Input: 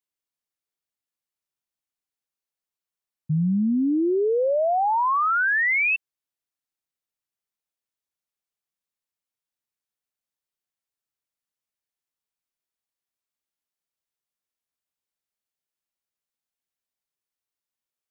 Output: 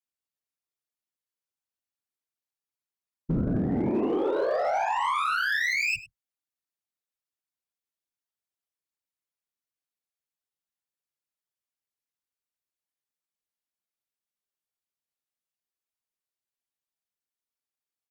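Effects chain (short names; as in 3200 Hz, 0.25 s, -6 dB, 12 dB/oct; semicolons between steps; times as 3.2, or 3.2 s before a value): added harmonics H 2 -13 dB, 3 -17 dB, 8 -28 dB, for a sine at -18 dBFS; whisperiser; limiter -19 dBFS, peak gain reduction 8 dB; hard clip -20.5 dBFS, distortion -27 dB; on a send: echo 0.101 s -17.5 dB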